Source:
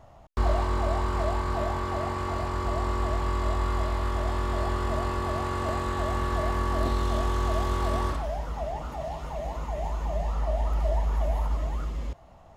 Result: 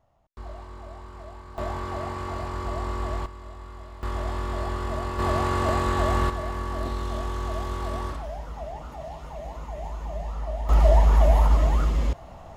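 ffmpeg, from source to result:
ffmpeg -i in.wav -af "asetnsamples=nb_out_samples=441:pad=0,asendcmd='1.58 volume volume -2dB;3.26 volume volume -14.5dB;4.03 volume volume -1.5dB;5.19 volume volume 5dB;6.3 volume volume -3.5dB;10.69 volume volume 9dB',volume=-15dB" out.wav

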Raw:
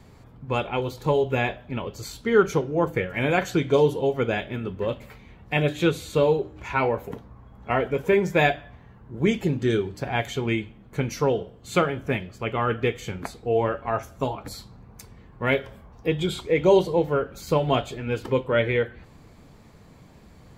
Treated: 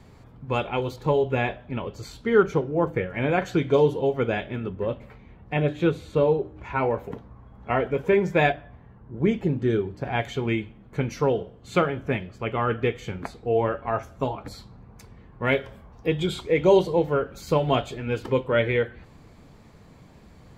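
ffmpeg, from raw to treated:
ffmpeg -i in.wav -af "asetnsamples=nb_out_samples=441:pad=0,asendcmd='0.96 lowpass f 3100;2.43 lowpass f 1800;3.46 lowpass f 3200;4.69 lowpass f 1400;6.91 lowpass f 3100;8.52 lowpass f 1300;10.05 lowpass f 3300;15.45 lowpass f 8300',lowpass=frequency=8000:poles=1" out.wav

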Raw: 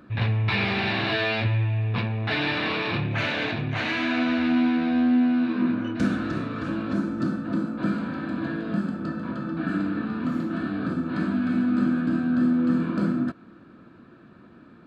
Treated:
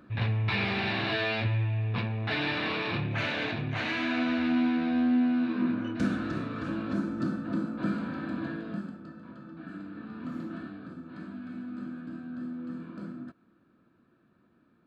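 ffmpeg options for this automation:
ffmpeg -i in.wav -af "volume=2dB,afade=type=out:start_time=8.34:duration=0.71:silence=0.281838,afade=type=in:start_time=9.89:duration=0.58:silence=0.473151,afade=type=out:start_time=10.47:duration=0.34:silence=0.446684" out.wav

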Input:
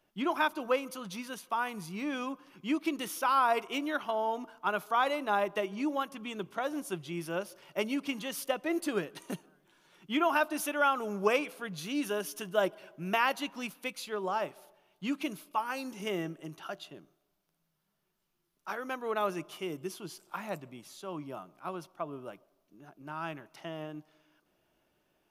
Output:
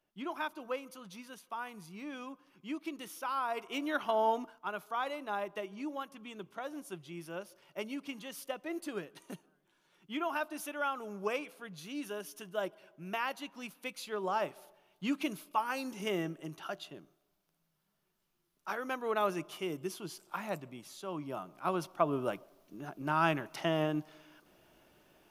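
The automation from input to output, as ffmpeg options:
ffmpeg -i in.wav -af "volume=20dB,afade=type=in:start_time=3.53:duration=0.76:silence=0.266073,afade=type=out:start_time=4.29:duration=0.3:silence=0.298538,afade=type=in:start_time=13.53:duration=0.92:silence=0.421697,afade=type=in:start_time=21.21:duration=1.03:silence=0.334965" out.wav

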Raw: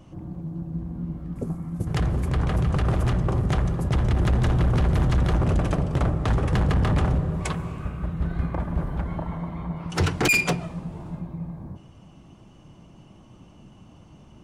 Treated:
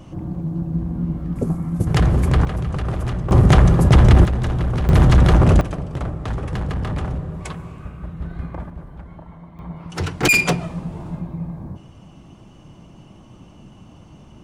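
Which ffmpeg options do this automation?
ffmpeg -i in.wav -af "asetnsamples=nb_out_samples=441:pad=0,asendcmd='2.45 volume volume -1dB;3.31 volume volume 11.5dB;4.25 volume volume 0dB;4.89 volume volume 9dB;5.61 volume volume -3dB;8.7 volume volume -9.5dB;9.59 volume volume -2dB;10.23 volume volume 5dB',volume=8dB" out.wav

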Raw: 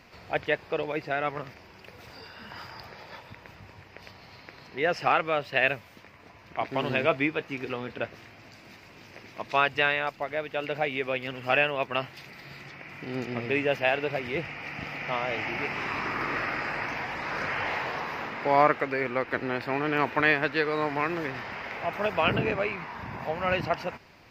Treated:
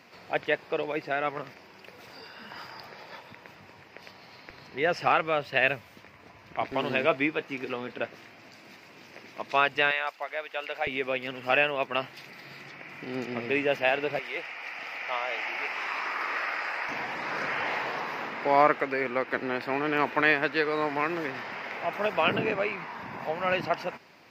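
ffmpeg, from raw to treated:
ffmpeg -i in.wav -af "asetnsamples=nb_out_samples=441:pad=0,asendcmd='4.5 highpass f 73;6.72 highpass f 170;9.91 highpass f 680;10.87 highpass f 170;14.19 highpass f 630;16.89 highpass f 180',highpass=170" out.wav

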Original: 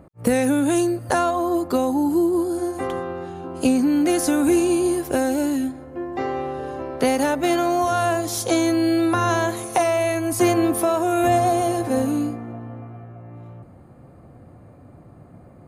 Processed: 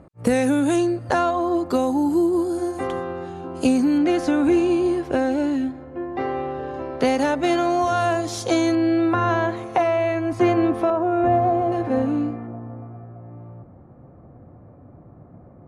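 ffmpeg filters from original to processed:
ffmpeg -i in.wav -af "asetnsamples=nb_out_samples=441:pad=0,asendcmd='0.76 lowpass f 4900;1.66 lowpass f 8600;3.98 lowpass f 3600;6.74 lowpass f 5900;8.75 lowpass f 2600;10.9 lowpass f 1300;11.72 lowpass f 2500;12.47 lowpass f 1300',lowpass=8200" out.wav

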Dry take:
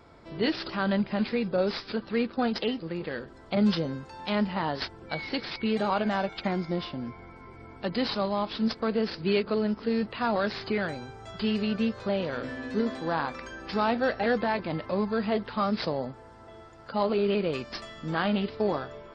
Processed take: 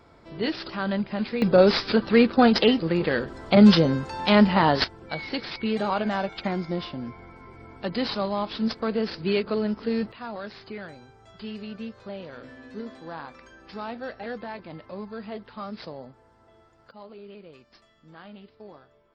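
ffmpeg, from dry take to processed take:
ffmpeg -i in.wav -af "asetnsamples=nb_out_samples=441:pad=0,asendcmd='1.42 volume volume 10dB;4.84 volume volume 1dB;10.12 volume volume -9dB;16.91 volume volume -18.5dB',volume=-0.5dB" out.wav

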